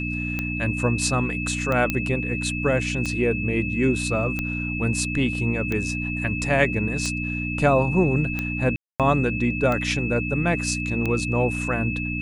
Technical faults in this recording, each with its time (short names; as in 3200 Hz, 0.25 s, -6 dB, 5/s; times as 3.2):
hum 60 Hz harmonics 5 -29 dBFS
tick 45 rpm -13 dBFS
tone 2600 Hz -29 dBFS
1.9 pop -9 dBFS
8.76–9 gap 0.237 s